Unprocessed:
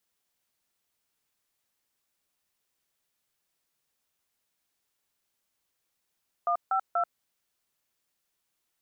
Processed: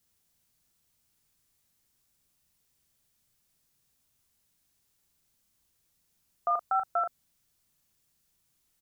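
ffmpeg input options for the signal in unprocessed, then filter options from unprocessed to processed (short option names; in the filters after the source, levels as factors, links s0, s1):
-f lavfi -i "aevalsrc='0.0501*clip(min(mod(t,0.241),0.086-mod(t,0.241))/0.002,0,1)*(eq(floor(t/0.241),0)*(sin(2*PI*697*mod(t,0.241))+sin(2*PI*1209*mod(t,0.241)))+eq(floor(t/0.241),1)*(sin(2*PI*770*mod(t,0.241))+sin(2*PI*1336*mod(t,0.241)))+eq(floor(t/0.241),2)*(sin(2*PI*697*mod(t,0.241))+sin(2*PI*1336*mod(t,0.241))))':d=0.723:s=44100"
-filter_complex "[0:a]bass=f=250:g=14,treble=f=4000:g=6,asplit=2[s0][s1];[s1]adelay=38,volume=0.447[s2];[s0][s2]amix=inputs=2:normalize=0"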